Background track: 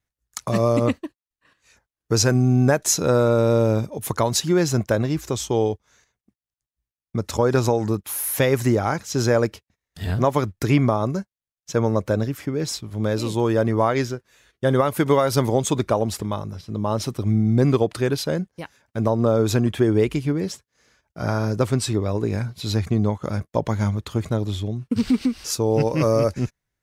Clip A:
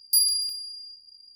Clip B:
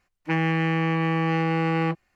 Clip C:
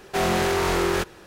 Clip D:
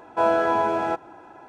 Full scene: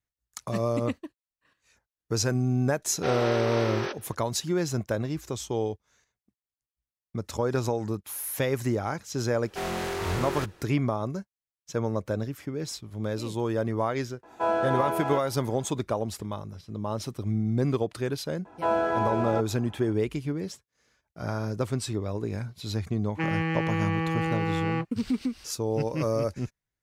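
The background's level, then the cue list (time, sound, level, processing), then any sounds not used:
background track -8 dB
2.89 add C -7.5 dB + brick-wall FIR band-pass 230–6200 Hz
9.42 add C -9 dB
14.23 add D -5.5 dB
18.45 add D -5.5 dB + low shelf 190 Hz +7 dB
22.9 add B -4.5 dB + notch 680 Hz
not used: A

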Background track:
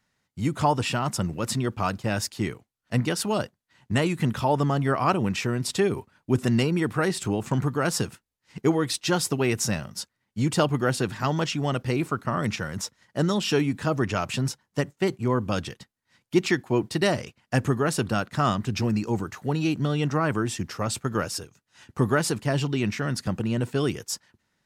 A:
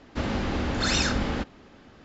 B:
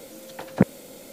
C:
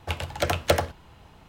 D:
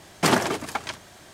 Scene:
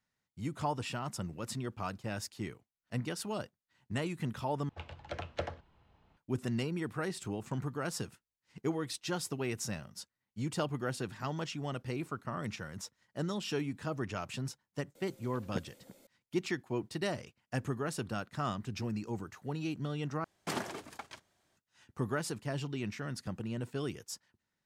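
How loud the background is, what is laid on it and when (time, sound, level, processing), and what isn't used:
background track -12 dB
4.69 replace with C -15 dB + air absorption 140 m
14.95 add B -18 dB + echo 0.339 s -18.5 dB
20.24 replace with D -16.5 dB + gate -40 dBFS, range -10 dB
not used: A

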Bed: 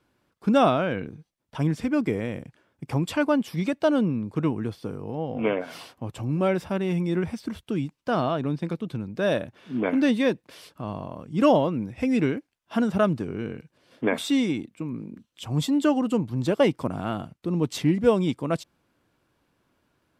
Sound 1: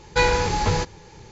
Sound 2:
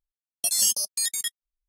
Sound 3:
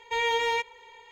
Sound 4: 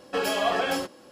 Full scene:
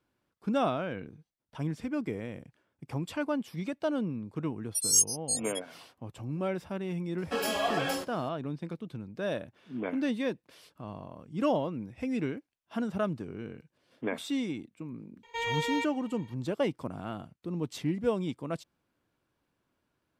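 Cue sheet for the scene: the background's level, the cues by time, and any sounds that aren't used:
bed -9 dB
4.31 add 2 -2 dB + spectral expander 2.5:1
7.18 add 4 -5 dB + high shelf 8000 Hz +5.5 dB
15.23 add 3 -6 dB
not used: 1

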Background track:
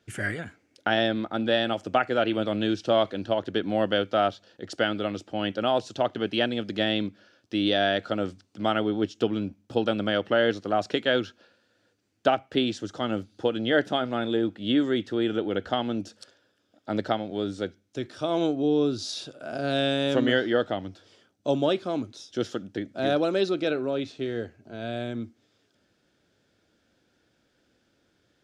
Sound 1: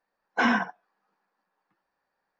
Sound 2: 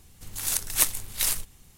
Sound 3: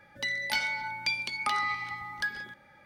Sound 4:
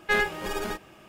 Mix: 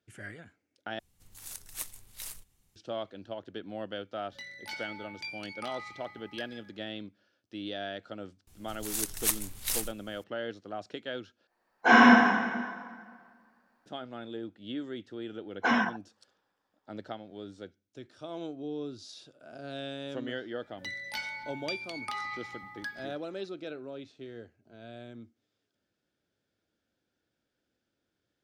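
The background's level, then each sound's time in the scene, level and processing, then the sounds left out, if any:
background track -14 dB
0.99 replace with 2 -16.5 dB
4.16 add 3 -12.5 dB + doubler 22 ms -7.5 dB
8.47 add 2 -6 dB
11.47 replace with 1 -3 dB + plate-style reverb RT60 1.8 s, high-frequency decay 0.75×, DRR -9 dB
15.26 add 1 -3 dB
20.62 add 3 -7.5 dB
not used: 4

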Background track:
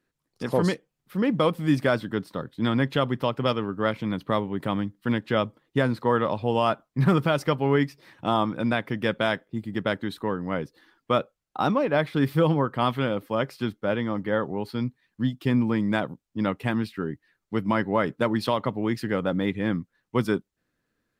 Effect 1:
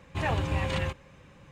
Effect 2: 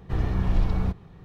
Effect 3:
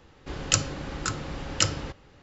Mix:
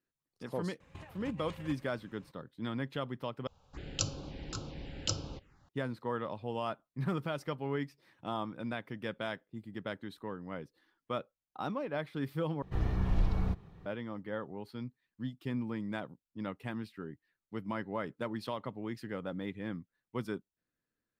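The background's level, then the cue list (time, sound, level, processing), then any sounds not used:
background track -13.5 dB
0.8 add 1 -14 dB + negative-ratio compressor -33 dBFS, ratio -0.5
3.47 replace with 3 -8 dB + envelope phaser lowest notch 290 Hz, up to 1900 Hz, full sweep at -28.5 dBFS
12.62 replace with 2 -6.5 dB

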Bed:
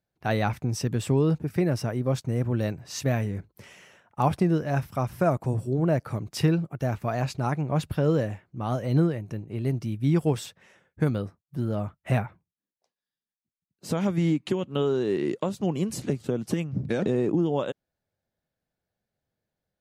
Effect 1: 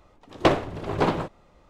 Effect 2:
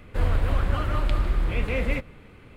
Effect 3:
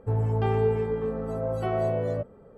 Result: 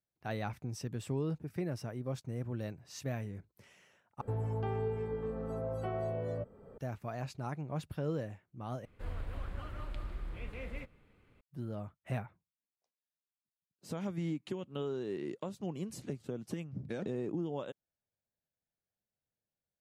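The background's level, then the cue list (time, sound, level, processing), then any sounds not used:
bed -12.5 dB
4.21 replace with 3 -10.5 dB + three-band squash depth 70%
8.85 replace with 2 -17.5 dB
not used: 1

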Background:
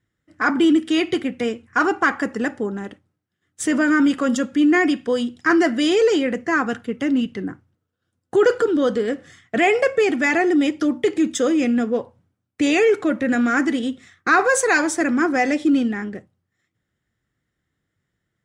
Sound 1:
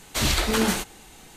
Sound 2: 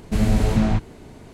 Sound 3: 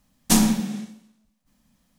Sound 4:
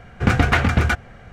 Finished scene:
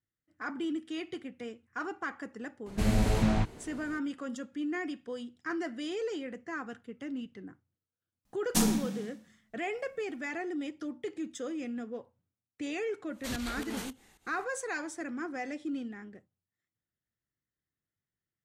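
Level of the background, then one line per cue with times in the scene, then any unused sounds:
background -18.5 dB
2.66 add 2 -4 dB + low shelf 390 Hz -4.5 dB
8.25 add 3 -9 dB
13.09 add 1 -15 dB + pump 111 bpm, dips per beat 2, -17 dB, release 0.191 s
not used: 4

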